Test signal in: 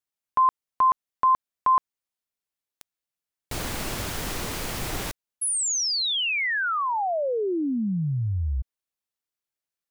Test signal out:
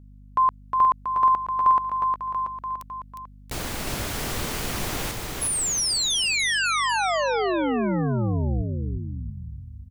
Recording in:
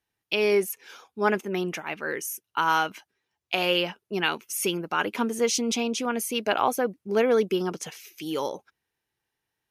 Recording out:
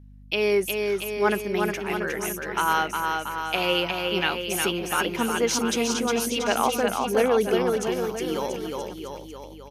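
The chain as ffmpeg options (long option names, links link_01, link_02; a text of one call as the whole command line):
ffmpeg -i in.wav -af "aecho=1:1:360|684|975.6|1238|1474:0.631|0.398|0.251|0.158|0.1,aeval=exprs='val(0)+0.00501*(sin(2*PI*50*n/s)+sin(2*PI*2*50*n/s)/2+sin(2*PI*3*50*n/s)/3+sin(2*PI*4*50*n/s)/4+sin(2*PI*5*50*n/s)/5)':channel_layout=same" out.wav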